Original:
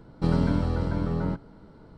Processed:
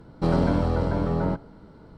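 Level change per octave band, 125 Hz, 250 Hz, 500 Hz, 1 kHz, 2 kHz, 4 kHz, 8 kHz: +1.0 dB, +1.5 dB, +6.0 dB, +6.0 dB, +3.0 dB, +1.5 dB, no reading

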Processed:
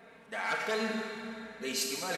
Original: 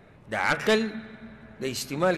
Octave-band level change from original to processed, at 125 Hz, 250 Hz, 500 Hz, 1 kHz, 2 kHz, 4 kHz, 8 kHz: -15.0 dB, -8.5 dB, -9.5 dB, -7.0 dB, -6.5 dB, -3.0 dB, +1.0 dB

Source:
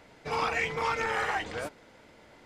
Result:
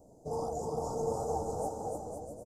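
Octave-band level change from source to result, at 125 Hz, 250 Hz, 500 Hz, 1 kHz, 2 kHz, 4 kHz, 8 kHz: +2.5 dB, +2.0 dB, +1.5 dB, -5.5 dB, under -40 dB, -18.5 dB, +1.0 dB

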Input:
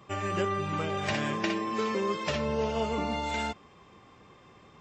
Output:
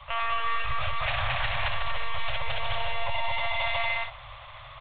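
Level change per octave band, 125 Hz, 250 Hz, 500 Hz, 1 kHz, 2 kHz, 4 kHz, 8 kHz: -1.0 dB, under -20 dB, -6.0 dB, +2.5 dB, +7.0 dB, +6.5 dB, under -30 dB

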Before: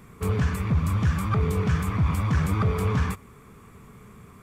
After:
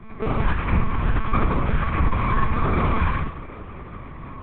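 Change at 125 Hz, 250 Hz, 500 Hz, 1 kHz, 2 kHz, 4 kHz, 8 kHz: -1.5 dB, +1.0 dB, +2.5 dB, +8.0 dB, +5.5 dB, +1.5 dB, under -35 dB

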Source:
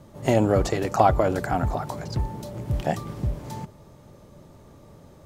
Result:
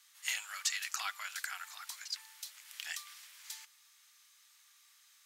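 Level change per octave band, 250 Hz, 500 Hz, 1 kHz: under -40 dB, under -40 dB, -22.5 dB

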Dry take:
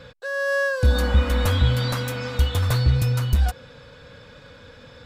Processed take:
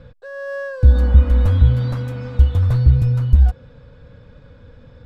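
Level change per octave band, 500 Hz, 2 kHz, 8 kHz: -3.0 dB, -8.5 dB, under -15 dB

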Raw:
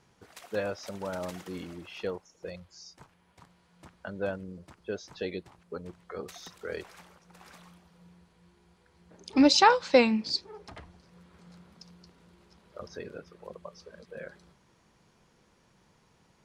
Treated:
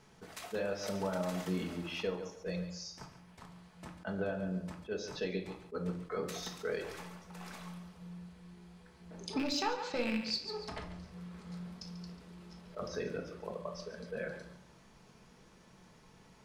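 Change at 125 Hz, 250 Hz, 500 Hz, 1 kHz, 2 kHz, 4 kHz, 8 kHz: +3.5 dB, -7.5 dB, -6.5 dB, -12.5 dB, -7.5 dB, -8.0 dB, -6.5 dB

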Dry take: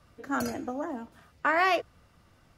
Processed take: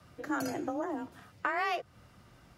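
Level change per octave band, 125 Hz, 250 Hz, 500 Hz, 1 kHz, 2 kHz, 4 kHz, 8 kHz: -1.5 dB, -2.5 dB, -5.5 dB, -6.0 dB, -6.5 dB, -6.5 dB, -3.5 dB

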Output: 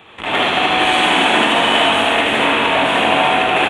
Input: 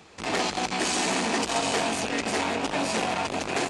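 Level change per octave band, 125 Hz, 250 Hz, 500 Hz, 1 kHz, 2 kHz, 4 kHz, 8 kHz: +7.0 dB, +8.5 dB, +11.0 dB, +14.0 dB, +15.0 dB, +14.5 dB, -2.0 dB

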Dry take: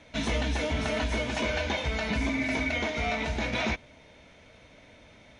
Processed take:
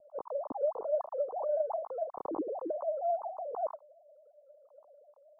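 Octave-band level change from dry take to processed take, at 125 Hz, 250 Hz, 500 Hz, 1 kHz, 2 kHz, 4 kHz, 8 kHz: under -35 dB, -13.0 dB, +1.5 dB, -2.5 dB, under -40 dB, under -40 dB, under -35 dB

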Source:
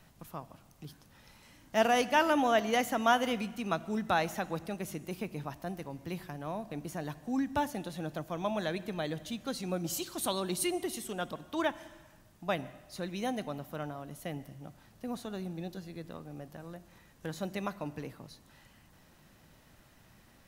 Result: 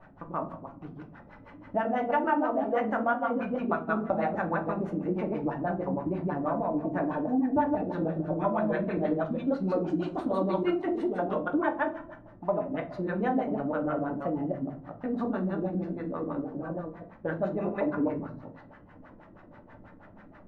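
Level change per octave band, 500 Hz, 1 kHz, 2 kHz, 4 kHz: +5.5 dB, +2.5 dB, 0.0 dB, under -10 dB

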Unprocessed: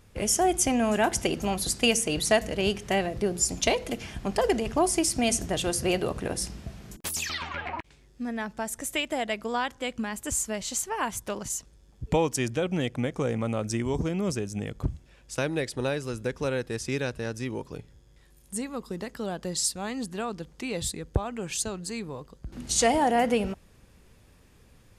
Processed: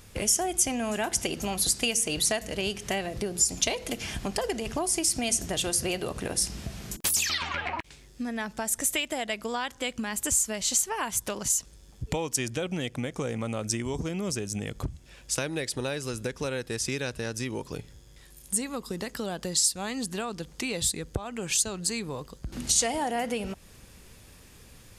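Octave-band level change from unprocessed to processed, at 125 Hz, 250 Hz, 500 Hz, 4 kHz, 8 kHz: -3.0 dB, -3.5 dB, -4.5 dB, +1.5 dB, +4.0 dB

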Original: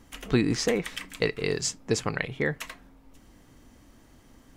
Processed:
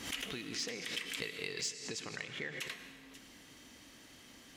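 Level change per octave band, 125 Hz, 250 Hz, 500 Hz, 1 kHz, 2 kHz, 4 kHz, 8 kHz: -20.5 dB, -18.0 dB, -18.0 dB, -13.5 dB, -8.0 dB, -4.0 dB, -8.0 dB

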